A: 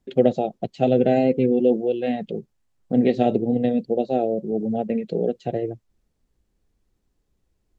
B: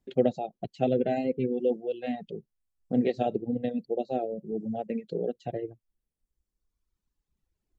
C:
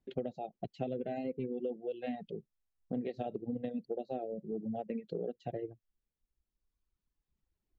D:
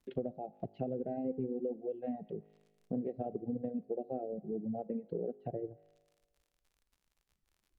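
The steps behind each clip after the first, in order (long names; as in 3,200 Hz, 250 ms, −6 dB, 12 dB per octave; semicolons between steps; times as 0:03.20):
reverb reduction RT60 1.8 s; level −6 dB
downward compressor 12 to 1, threshold −29 dBFS, peak gain reduction 12.5 dB; high-frequency loss of the air 91 metres; level −3.5 dB
surface crackle 65 per second −58 dBFS; tuned comb filter 52 Hz, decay 1.4 s, harmonics all, mix 40%; treble cut that deepens with the level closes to 790 Hz, closed at −42 dBFS; level +4.5 dB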